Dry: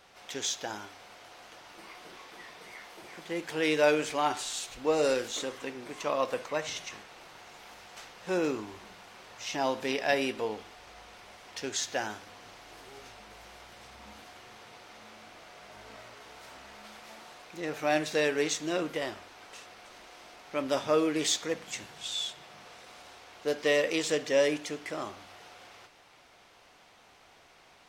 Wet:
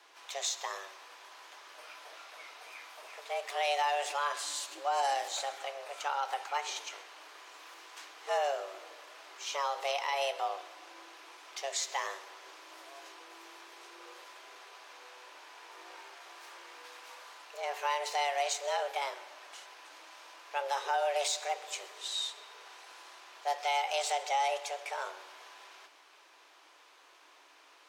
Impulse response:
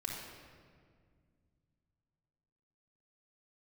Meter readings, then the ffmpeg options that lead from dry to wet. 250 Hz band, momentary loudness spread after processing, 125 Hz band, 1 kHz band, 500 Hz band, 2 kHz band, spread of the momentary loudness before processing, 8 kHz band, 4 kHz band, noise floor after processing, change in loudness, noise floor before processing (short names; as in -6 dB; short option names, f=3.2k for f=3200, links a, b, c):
-28.0 dB, 20 LU, under -40 dB, +4.0 dB, -7.5 dB, -3.5 dB, 23 LU, -2.0 dB, -1.5 dB, -60 dBFS, -3.5 dB, -59 dBFS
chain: -filter_complex "[0:a]afreqshift=280,alimiter=limit=-20.5dB:level=0:latency=1:release=94,asplit=2[a][b];[1:a]atrim=start_sample=2205,adelay=129[c];[b][c]afir=irnorm=-1:irlink=0,volume=-18.5dB[d];[a][d]amix=inputs=2:normalize=0,volume=-1.5dB"